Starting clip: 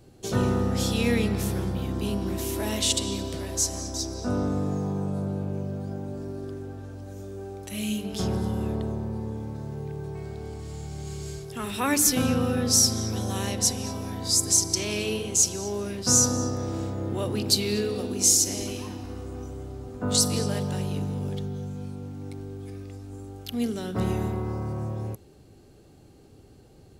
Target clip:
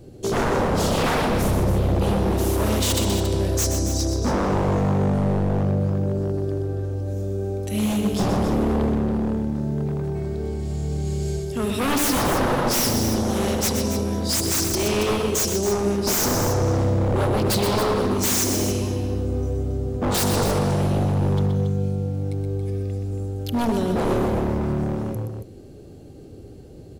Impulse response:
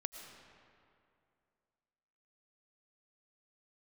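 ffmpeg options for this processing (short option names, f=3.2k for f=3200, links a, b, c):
-filter_complex "[0:a]lowshelf=f=700:t=q:w=1.5:g=6.5,aeval=exprs='0.106*(abs(mod(val(0)/0.106+3,4)-2)-1)':c=same,asplit=2[a][b];[b]aecho=0:1:124|278:0.447|0.335[c];[a][c]amix=inputs=2:normalize=0,volume=2.5dB"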